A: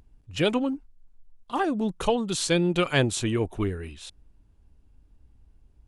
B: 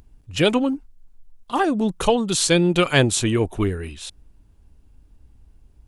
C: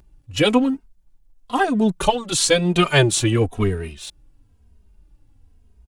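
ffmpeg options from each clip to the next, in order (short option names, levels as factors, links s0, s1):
-af "highshelf=f=6200:g=5,volume=1.88"
-filter_complex "[0:a]asplit=2[s0][s1];[s1]aeval=exprs='sgn(val(0))*max(abs(val(0))-0.015,0)':c=same,volume=0.562[s2];[s0][s2]amix=inputs=2:normalize=0,asplit=2[s3][s4];[s4]adelay=2.9,afreqshift=-1[s5];[s3][s5]amix=inputs=2:normalize=1,volume=1.12"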